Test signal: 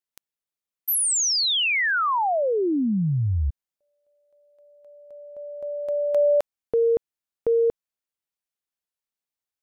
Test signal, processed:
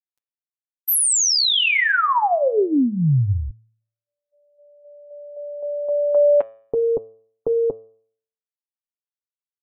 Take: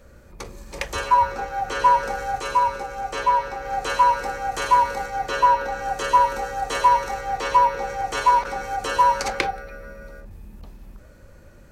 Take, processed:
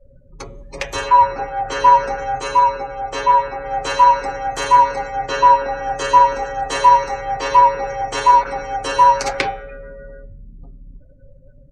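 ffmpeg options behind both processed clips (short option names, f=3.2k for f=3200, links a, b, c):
-af "aecho=1:1:7.3:0.58,afftdn=nr=35:nf=-41,bandreject=f=111.5:t=h:w=4,bandreject=f=223:t=h:w=4,bandreject=f=334.5:t=h:w=4,bandreject=f=446:t=h:w=4,bandreject=f=557.5:t=h:w=4,bandreject=f=669:t=h:w=4,bandreject=f=780.5:t=h:w=4,bandreject=f=892:t=h:w=4,bandreject=f=1.0035k:t=h:w=4,bandreject=f=1.115k:t=h:w=4,bandreject=f=1.2265k:t=h:w=4,bandreject=f=1.338k:t=h:w=4,bandreject=f=1.4495k:t=h:w=4,bandreject=f=1.561k:t=h:w=4,bandreject=f=1.6725k:t=h:w=4,bandreject=f=1.784k:t=h:w=4,bandreject=f=1.8955k:t=h:w=4,bandreject=f=2.007k:t=h:w=4,bandreject=f=2.1185k:t=h:w=4,bandreject=f=2.23k:t=h:w=4,bandreject=f=2.3415k:t=h:w=4,bandreject=f=2.453k:t=h:w=4,bandreject=f=2.5645k:t=h:w=4,bandreject=f=2.676k:t=h:w=4,bandreject=f=2.7875k:t=h:w=4,bandreject=f=2.899k:t=h:w=4,bandreject=f=3.0105k:t=h:w=4,bandreject=f=3.122k:t=h:w=4,bandreject=f=3.2335k:t=h:w=4,bandreject=f=3.345k:t=h:w=4,bandreject=f=3.4565k:t=h:w=4,bandreject=f=3.568k:t=h:w=4,bandreject=f=3.6795k:t=h:w=4,bandreject=f=3.791k:t=h:w=4,bandreject=f=3.9025k:t=h:w=4,volume=3dB"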